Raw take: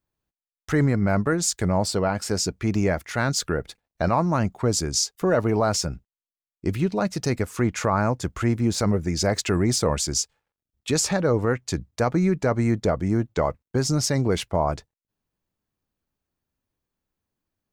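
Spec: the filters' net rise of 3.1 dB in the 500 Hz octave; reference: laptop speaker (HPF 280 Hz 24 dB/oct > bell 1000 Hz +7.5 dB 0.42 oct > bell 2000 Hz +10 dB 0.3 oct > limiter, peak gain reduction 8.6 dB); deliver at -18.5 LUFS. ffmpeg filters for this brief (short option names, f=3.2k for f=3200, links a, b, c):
-af "highpass=f=280:w=0.5412,highpass=f=280:w=1.3066,equalizer=f=500:t=o:g=3.5,equalizer=f=1k:t=o:w=0.42:g=7.5,equalizer=f=2k:t=o:w=0.3:g=10,volume=7dB,alimiter=limit=-6dB:level=0:latency=1"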